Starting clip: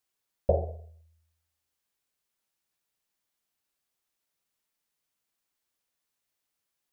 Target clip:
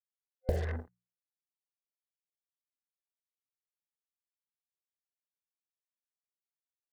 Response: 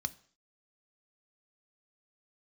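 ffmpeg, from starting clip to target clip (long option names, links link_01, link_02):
-af "tiltshelf=frequency=970:gain=6.5,acrusher=bits=5:mix=0:aa=0.5,superequalizer=8b=0.501:11b=3.16,acompressor=threshold=-26dB:ratio=10,bandreject=frequency=60:width_type=h:width=6,bandreject=frequency=120:width_type=h:width=6,bandreject=frequency=180:width_type=h:width=6"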